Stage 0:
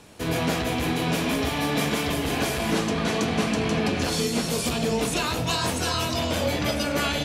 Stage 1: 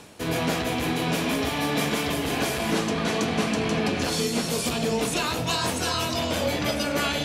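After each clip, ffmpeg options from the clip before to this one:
-af "lowshelf=f=71:g=-9,areverse,acompressor=mode=upward:threshold=-29dB:ratio=2.5,areverse"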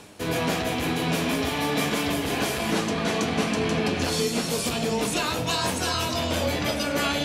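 -af "flanger=delay=9.8:depth=1.9:regen=73:speed=0.39:shape=sinusoidal,volume=4.5dB"

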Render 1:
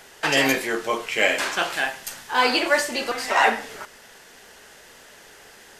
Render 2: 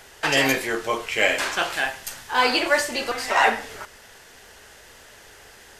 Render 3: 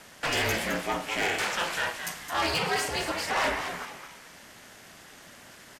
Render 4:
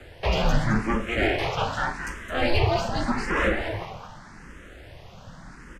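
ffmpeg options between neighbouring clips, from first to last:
-af "lowshelf=f=130:t=q:w=1.5:g=6.5"
-filter_complex "[0:a]asoftclip=type=tanh:threshold=-20dB,aeval=exprs='val(0)*sin(2*PI*170*n/s)':c=same,asplit=5[a][b][c][d][e];[b]adelay=215,afreqshift=120,volume=-8.5dB[f];[c]adelay=430,afreqshift=240,volume=-16.9dB[g];[d]adelay=645,afreqshift=360,volume=-25.3dB[h];[e]adelay=860,afreqshift=480,volume=-33.7dB[i];[a][f][g][h][i]amix=inputs=5:normalize=0"
-filter_complex "[0:a]aemphasis=mode=reproduction:type=riaa,afreqshift=-72,asplit=2[a][b];[b]afreqshift=0.84[c];[a][c]amix=inputs=2:normalize=1,volume=6.5dB"

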